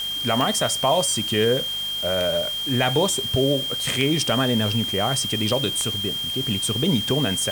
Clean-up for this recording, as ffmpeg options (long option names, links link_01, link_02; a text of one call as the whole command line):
ffmpeg -i in.wav -af "adeclick=threshold=4,bandreject=frequency=50.3:width_type=h:width=4,bandreject=frequency=100.6:width_type=h:width=4,bandreject=frequency=150.9:width_type=h:width=4,bandreject=frequency=201.2:width_type=h:width=4,bandreject=frequency=3200:width=30,afwtdn=0.011" out.wav